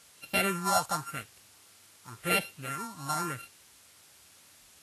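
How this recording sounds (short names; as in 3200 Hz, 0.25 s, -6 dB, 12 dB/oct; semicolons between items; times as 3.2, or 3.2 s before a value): a buzz of ramps at a fixed pitch in blocks of 32 samples; phasing stages 4, 0.91 Hz, lowest notch 380–1200 Hz; a quantiser's noise floor 10-bit, dither triangular; Vorbis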